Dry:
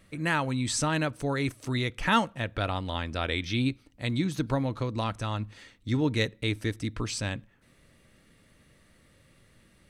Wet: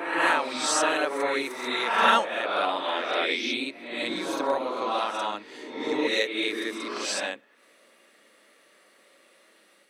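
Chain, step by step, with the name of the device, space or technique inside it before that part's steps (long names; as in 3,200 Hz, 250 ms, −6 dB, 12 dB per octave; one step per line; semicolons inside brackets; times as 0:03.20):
ghost voice (reversed playback; convolution reverb RT60 1.1 s, pre-delay 29 ms, DRR −4 dB; reversed playback; high-pass filter 360 Hz 24 dB per octave)
level +1 dB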